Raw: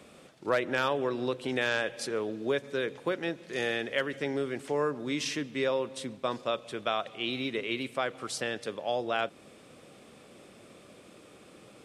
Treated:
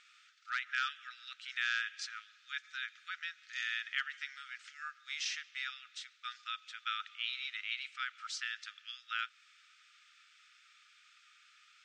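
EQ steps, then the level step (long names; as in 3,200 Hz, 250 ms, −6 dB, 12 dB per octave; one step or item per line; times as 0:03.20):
linear-phase brick-wall high-pass 1,200 Hz
Butterworth low-pass 6,900 Hz 36 dB per octave
−3.0 dB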